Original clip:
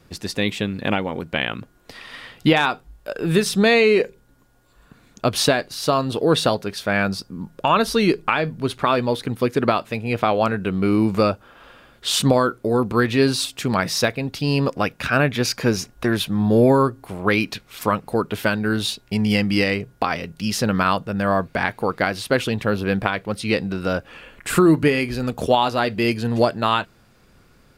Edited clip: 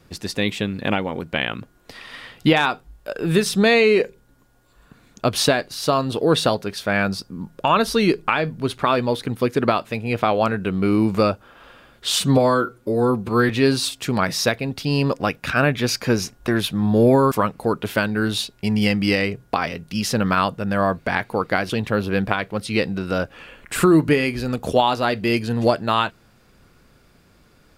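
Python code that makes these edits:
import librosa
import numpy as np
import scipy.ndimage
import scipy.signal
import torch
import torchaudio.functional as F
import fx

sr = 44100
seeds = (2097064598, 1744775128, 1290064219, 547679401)

y = fx.edit(x, sr, fx.stretch_span(start_s=12.19, length_s=0.87, factor=1.5),
    fx.cut(start_s=16.88, length_s=0.92),
    fx.cut(start_s=22.18, length_s=0.26), tone=tone)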